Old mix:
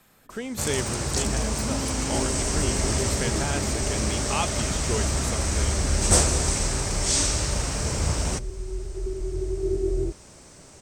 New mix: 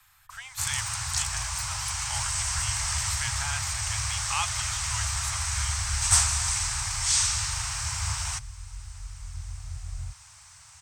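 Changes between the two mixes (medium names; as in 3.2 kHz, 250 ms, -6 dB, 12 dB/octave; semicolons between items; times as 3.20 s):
first sound: add high-pass 95 Hz; second sound: add high-pass 69 Hz; master: add inverse Chebyshev band-stop 220–450 Hz, stop band 60 dB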